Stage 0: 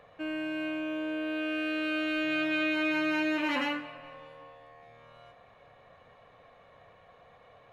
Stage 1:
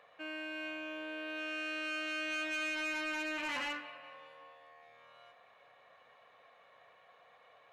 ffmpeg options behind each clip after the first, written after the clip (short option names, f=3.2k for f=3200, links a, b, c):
-af "highpass=f=1.2k:p=1,highshelf=f=5.5k:g=-4.5,asoftclip=type=tanh:threshold=-32.5dB"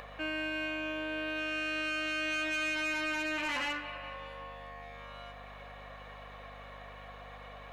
-filter_complex "[0:a]asplit=2[a][b];[b]acompressor=mode=upward:threshold=-45dB:ratio=2.5,volume=1.5dB[c];[a][c]amix=inputs=2:normalize=0,aeval=exprs='val(0)+0.00224*(sin(2*PI*50*n/s)+sin(2*PI*2*50*n/s)/2+sin(2*PI*3*50*n/s)/3+sin(2*PI*4*50*n/s)/4+sin(2*PI*5*50*n/s)/5)':c=same,alimiter=level_in=6dB:limit=-24dB:level=0:latency=1:release=235,volume=-6dB,volume=1dB"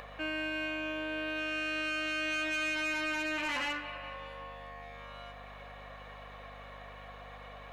-af anull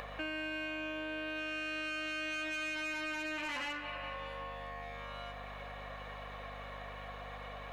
-af "acompressor=threshold=-40dB:ratio=5,volume=2.5dB"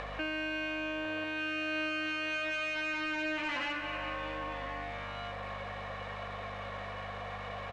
-filter_complex "[0:a]aeval=exprs='val(0)+0.5*0.00376*sgn(val(0))':c=same,lowpass=4.3k,asplit=2[a][b];[b]adelay=1050,volume=-7dB,highshelf=f=4k:g=-23.6[c];[a][c]amix=inputs=2:normalize=0,volume=2.5dB"